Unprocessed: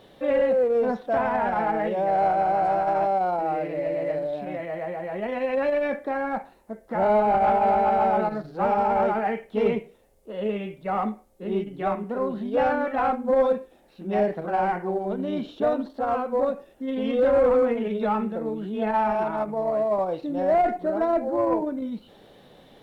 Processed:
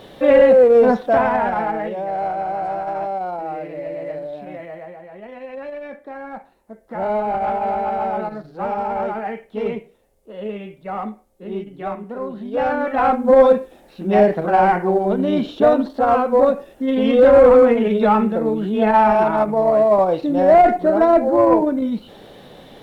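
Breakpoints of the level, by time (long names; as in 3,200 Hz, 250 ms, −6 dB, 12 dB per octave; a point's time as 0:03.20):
0:00.93 +10.5 dB
0:02.05 −1.5 dB
0:04.65 −1.5 dB
0:05.07 −8 dB
0:05.86 −8 dB
0:07.03 −1 dB
0:12.36 −1 dB
0:13.27 +9.5 dB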